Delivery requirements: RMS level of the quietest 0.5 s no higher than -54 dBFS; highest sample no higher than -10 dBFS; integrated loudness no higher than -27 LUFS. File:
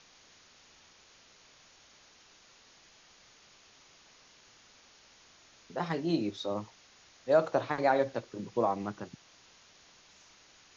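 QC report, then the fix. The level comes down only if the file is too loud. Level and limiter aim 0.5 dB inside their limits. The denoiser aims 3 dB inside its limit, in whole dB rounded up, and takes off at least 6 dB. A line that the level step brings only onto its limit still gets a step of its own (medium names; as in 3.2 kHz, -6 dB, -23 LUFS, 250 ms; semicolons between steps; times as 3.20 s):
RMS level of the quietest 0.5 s -60 dBFS: pass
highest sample -13.0 dBFS: pass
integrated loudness -32.0 LUFS: pass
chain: none needed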